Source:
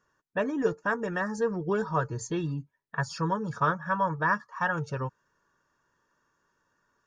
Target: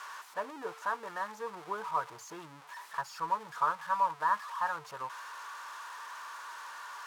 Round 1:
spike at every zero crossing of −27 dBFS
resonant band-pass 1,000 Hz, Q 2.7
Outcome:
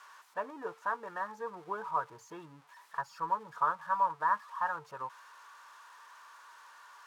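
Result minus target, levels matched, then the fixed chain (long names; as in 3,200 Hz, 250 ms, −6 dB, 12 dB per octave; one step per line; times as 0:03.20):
spike at every zero crossing: distortion −10 dB
spike at every zero crossing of −17 dBFS
resonant band-pass 1,000 Hz, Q 2.7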